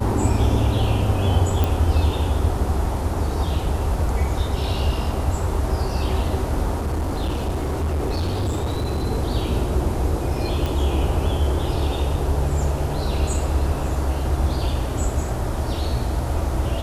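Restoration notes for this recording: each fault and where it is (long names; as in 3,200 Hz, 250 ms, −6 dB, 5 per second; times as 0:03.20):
0:01.64: click
0:06.75–0:09.06: clipping −19.5 dBFS
0:10.66: click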